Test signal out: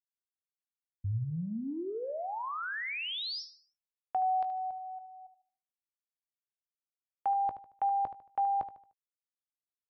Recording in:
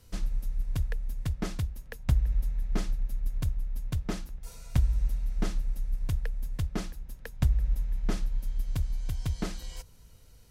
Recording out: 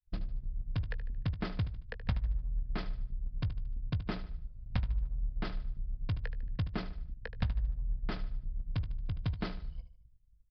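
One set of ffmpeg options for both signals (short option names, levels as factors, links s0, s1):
-filter_complex "[0:a]anlmdn=0.631,agate=range=0.0224:threshold=0.00355:ratio=3:detection=peak,equalizer=f=97:t=o:w=1:g=6.5,acrossover=split=710|1400[s0][s1][s2];[s0]acompressor=threshold=0.0316:ratio=6[s3];[s3][s1][s2]amix=inputs=3:normalize=0,asplit=2[s4][s5];[s5]adelay=18,volume=0.2[s6];[s4][s6]amix=inputs=2:normalize=0,asplit=2[s7][s8];[s8]aecho=0:1:75|150|225|300:0.237|0.0877|0.0325|0.012[s9];[s7][s9]amix=inputs=2:normalize=0,aresample=11025,aresample=44100"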